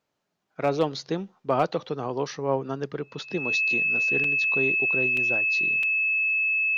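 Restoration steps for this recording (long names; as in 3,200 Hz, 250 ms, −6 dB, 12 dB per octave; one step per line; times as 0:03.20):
clipped peaks rebuilt −12.5 dBFS
notch filter 2,600 Hz, Q 30
repair the gap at 0:04.24/0:05.17/0:05.83, 3.2 ms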